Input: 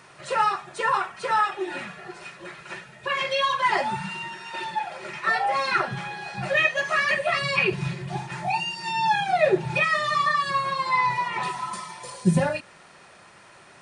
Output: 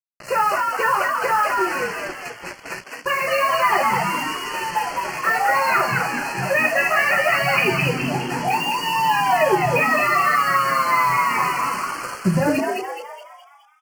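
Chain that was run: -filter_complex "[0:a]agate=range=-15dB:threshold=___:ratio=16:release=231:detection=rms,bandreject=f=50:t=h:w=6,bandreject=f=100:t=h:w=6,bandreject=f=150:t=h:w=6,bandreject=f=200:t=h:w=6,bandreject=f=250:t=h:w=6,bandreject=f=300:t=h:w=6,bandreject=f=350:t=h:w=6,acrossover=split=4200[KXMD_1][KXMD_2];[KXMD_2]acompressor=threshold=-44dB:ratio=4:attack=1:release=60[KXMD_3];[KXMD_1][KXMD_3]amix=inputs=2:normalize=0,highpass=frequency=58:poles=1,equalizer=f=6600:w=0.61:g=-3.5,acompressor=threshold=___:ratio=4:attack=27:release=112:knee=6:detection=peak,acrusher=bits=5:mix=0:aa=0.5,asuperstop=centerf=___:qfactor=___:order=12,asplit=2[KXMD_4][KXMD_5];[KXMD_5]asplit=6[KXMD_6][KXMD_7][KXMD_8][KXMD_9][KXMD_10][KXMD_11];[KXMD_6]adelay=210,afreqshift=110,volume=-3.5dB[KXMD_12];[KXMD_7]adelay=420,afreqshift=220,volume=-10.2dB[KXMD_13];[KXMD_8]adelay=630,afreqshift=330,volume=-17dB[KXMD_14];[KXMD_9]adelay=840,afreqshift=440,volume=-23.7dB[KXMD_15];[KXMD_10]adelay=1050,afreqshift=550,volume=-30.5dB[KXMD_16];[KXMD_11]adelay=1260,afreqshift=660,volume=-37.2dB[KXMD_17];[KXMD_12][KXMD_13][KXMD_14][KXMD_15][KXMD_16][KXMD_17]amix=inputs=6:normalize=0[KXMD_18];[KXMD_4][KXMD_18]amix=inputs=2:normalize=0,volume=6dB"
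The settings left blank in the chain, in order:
-44dB, -23dB, 3500, 2.8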